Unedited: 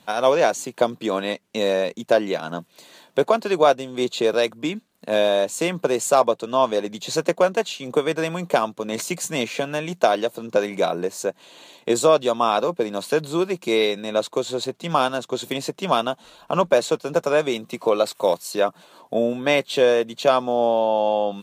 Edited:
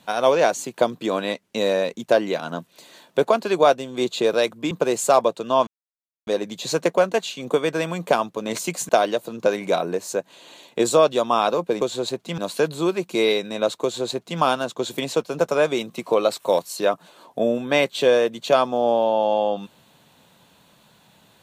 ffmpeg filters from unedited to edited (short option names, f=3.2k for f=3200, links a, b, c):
-filter_complex "[0:a]asplit=7[a][b][c][d][e][f][g];[a]atrim=end=4.712[h];[b]atrim=start=5.738:end=6.7,asetpts=PTS-STARTPTS,afade=t=out:st=0.958:d=0.004:c=hsin,apad=pad_dur=0.6[i];[c]atrim=start=6.7:end=9.322,asetpts=PTS-STARTPTS,afade=t=in:d=0.004:c=hsin[j];[d]atrim=start=9.988:end=12.912[k];[e]atrim=start=14.358:end=14.932[l];[f]atrim=start=12.908:end=15.662[m];[g]atrim=start=16.878[n];[i][j]concat=n=2:v=0:a=1[o];[h][o]acrossfade=d=0.004:c1=hsin:c2=hsin[p];[p][k]acrossfade=d=0.004:c1=hsin:c2=hsin[q];[q][l]acrossfade=d=0.004:c1=hsin:c2=hsin[r];[r][m]acrossfade=d=0.004:c1=hsin:c2=hsin[s];[s][n]acrossfade=d=0.004:c1=hsin:c2=hsin"